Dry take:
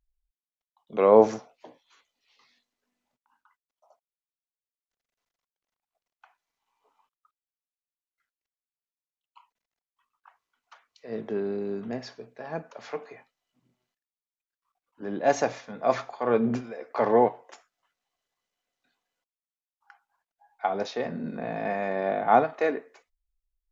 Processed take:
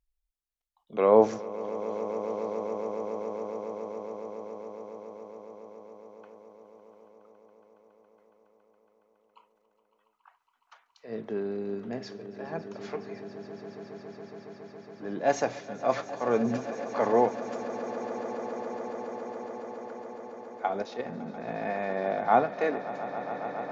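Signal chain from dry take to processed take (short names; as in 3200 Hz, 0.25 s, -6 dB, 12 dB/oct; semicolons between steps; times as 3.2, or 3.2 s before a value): 20.82–21.48 level quantiser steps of 9 dB; on a send: swelling echo 0.139 s, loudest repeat 8, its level -16.5 dB; on the sum: gain -2.5 dB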